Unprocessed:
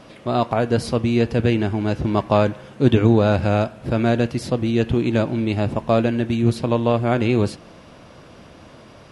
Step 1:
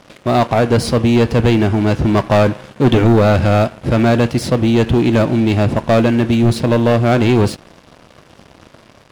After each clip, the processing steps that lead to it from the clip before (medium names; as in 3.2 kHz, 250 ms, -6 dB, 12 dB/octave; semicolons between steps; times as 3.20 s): waveshaping leveller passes 3; trim -2.5 dB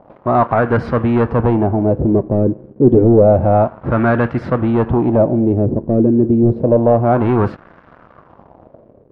LFO low-pass sine 0.29 Hz 360–1500 Hz; trim -2.5 dB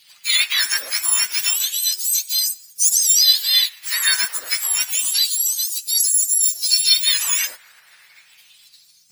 spectrum inverted on a logarithmic axis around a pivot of 1.6 kHz; trim +1.5 dB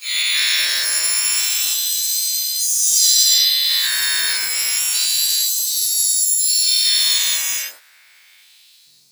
every event in the spectrogram widened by 480 ms; trim -8.5 dB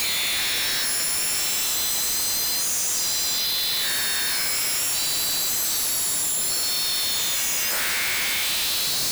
one-bit comparator; trim -5.5 dB